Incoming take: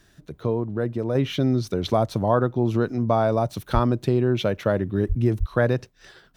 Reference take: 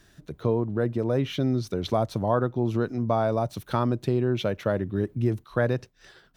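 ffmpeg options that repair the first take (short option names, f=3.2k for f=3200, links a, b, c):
-filter_complex "[0:a]asplit=3[a][b][c];[a]afade=t=out:st=3.73:d=0.02[d];[b]highpass=f=140:w=0.5412,highpass=f=140:w=1.3066,afade=t=in:st=3.73:d=0.02,afade=t=out:st=3.85:d=0.02[e];[c]afade=t=in:st=3.85:d=0.02[f];[d][e][f]amix=inputs=3:normalize=0,asplit=3[g][h][i];[g]afade=t=out:st=5.08:d=0.02[j];[h]highpass=f=140:w=0.5412,highpass=f=140:w=1.3066,afade=t=in:st=5.08:d=0.02,afade=t=out:st=5.2:d=0.02[k];[i]afade=t=in:st=5.2:d=0.02[l];[j][k][l]amix=inputs=3:normalize=0,asplit=3[m][n][o];[m]afade=t=out:st=5.39:d=0.02[p];[n]highpass=f=140:w=0.5412,highpass=f=140:w=1.3066,afade=t=in:st=5.39:d=0.02,afade=t=out:st=5.51:d=0.02[q];[o]afade=t=in:st=5.51:d=0.02[r];[p][q][r]amix=inputs=3:normalize=0,asetnsamples=n=441:p=0,asendcmd='1.15 volume volume -3.5dB',volume=0dB"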